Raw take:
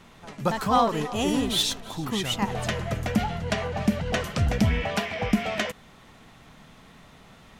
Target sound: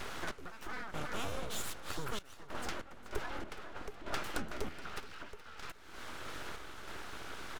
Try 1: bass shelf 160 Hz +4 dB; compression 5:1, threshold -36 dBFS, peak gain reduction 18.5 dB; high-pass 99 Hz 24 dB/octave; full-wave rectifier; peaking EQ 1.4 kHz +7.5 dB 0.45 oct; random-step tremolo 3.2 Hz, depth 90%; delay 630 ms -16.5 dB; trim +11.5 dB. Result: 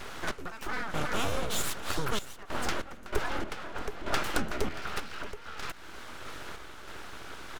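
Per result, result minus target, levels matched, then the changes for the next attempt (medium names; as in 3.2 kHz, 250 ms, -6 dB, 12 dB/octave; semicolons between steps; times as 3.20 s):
echo 207 ms late; compression: peak gain reduction -8.5 dB
change: delay 423 ms -16.5 dB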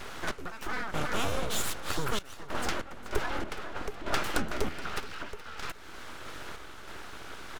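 compression: peak gain reduction -8.5 dB
change: compression 5:1, threshold -46.5 dBFS, peak gain reduction 27 dB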